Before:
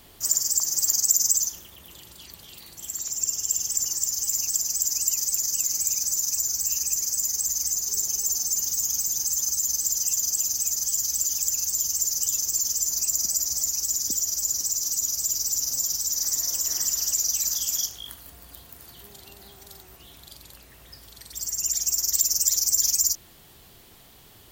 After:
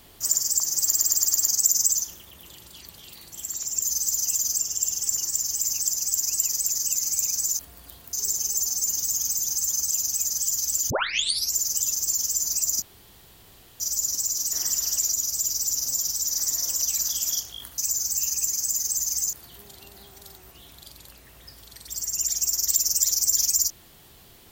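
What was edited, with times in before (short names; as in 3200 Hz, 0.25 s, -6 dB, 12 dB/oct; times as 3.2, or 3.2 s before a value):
0.83 stutter 0.11 s, 6 plays
6.27–7.82 swap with 18.24–18.78
9.6–10.37 move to 3.27
11.36 tape start 0.65 s
13.28–14.26 room tone
16.67–17.28 move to 14.98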